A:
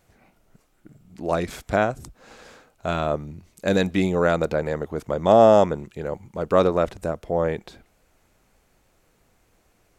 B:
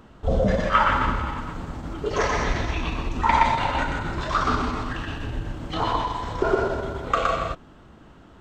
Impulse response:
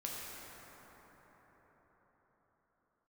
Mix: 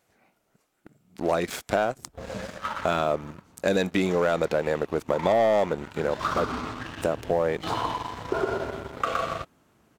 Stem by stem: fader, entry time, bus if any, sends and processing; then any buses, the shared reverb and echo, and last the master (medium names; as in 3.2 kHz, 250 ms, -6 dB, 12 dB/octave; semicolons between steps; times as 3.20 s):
-0.5 dB, 0.00 s, muted 6.50–7.00 s, no send, high-pass 280 Hz 6 dB/octave
5.82 s -19.5 dB -> 6.23 s -10 dB, 1.90 s, no send, high-pass 88 Hz 12 dB/octave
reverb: none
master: waveshaping leveller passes 2; compression 3:1, threshold -22 dBFS, peak gain reduction 10.5 dB